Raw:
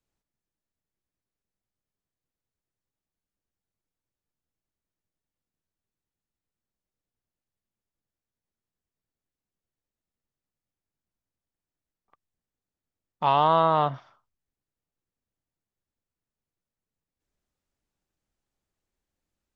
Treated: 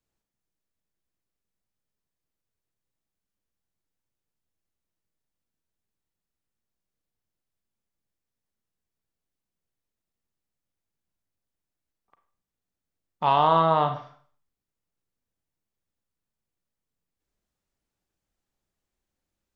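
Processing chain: Schroeder reverb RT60 0.48 s, combs from 33 ms, DRR 7.5 dB

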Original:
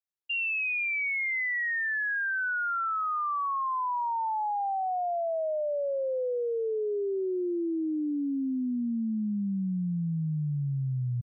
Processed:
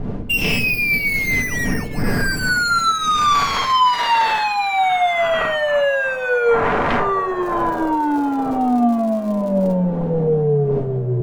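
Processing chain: median filter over 25 samples; wind noise 210 Hz -40 dBFS; 7.41–9.72 s: crackle 210 per s -49 dBFS; sine folder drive 18 dB, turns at -14 dBFS; tape echo 705 ms, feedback 79%, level -17 dB, low-pass 2.1 kHz; reverberation RT60 0.30 s, pre-delay 4 ms, DRR 4 dB; trim -2.5 dB

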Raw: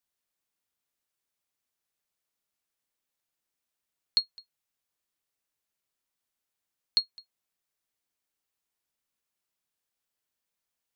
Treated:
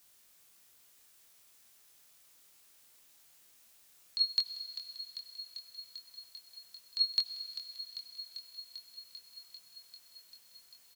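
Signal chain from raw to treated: treble shelf 3.2 kHz +6.5 dB; compressor with a negative ratio -34 dBFS, ratio -1; doubling 23 ms -5 dB; thinning echo 394 ms, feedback 79%, level -11 dB; reverberation RT60 4.1 s, pre-delay 72 ms, DRR 11 dB; trim +5.5 dB

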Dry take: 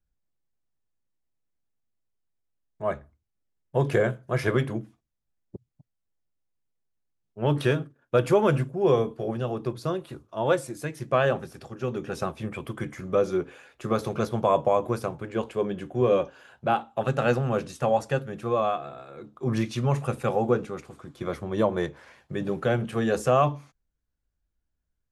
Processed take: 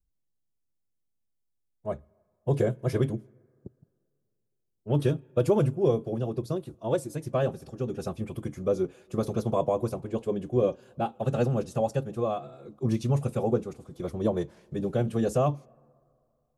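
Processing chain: peaking EQ 1.7 kHz -12.5 dB 2.1 oct; time stretch by phase-locked vocoder 0.66×; on a send: four-pole ladder low-pass 3.5 kHz, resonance 45% + reverberation RT60 2.4 s, pre-delay 87 ms, DRR 29.5 dB; on the sum: trim +1 dB

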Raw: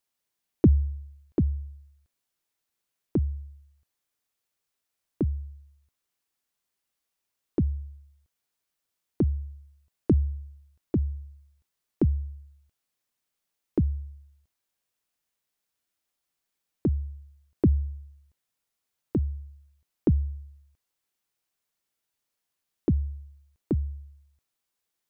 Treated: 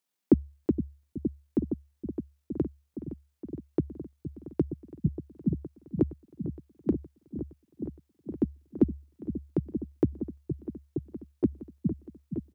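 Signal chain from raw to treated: resonant low shelf 120 Hz -10.5 dB, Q 1.5; tempo 2×; delay with an opening low-pass 466 ms, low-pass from 200 Hz, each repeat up 1 oct, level -6 dB

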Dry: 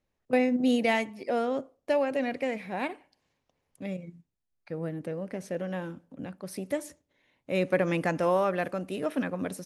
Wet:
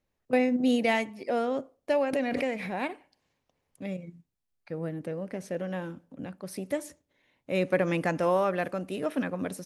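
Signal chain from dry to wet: 2.13–2.74 s: swell ahead of each attack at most 27 dB/s

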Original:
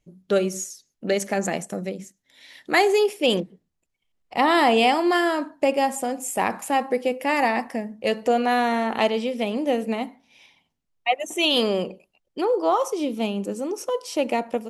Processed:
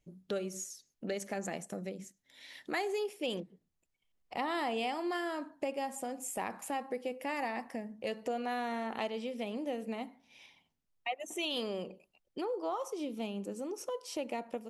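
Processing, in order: compression 2:1, threshold -37 dBFS, peak gain reduction 13 dB; trim -4.5 dB

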